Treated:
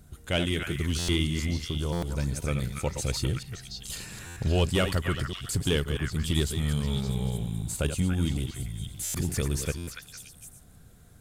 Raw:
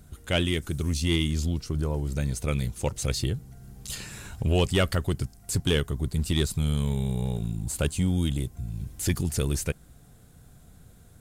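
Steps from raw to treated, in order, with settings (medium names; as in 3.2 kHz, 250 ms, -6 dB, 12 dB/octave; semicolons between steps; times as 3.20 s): chunks repeated in reverse 127 ms, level -8 dB; repeats whose band climbs or falls 285 ms, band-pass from 1.6 kHz, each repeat 1.4 oct, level -2 dB; buffer glitch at 0.98/1.92/4.26/9.04/9.77 s, samples 512, times 8; trim -2 dB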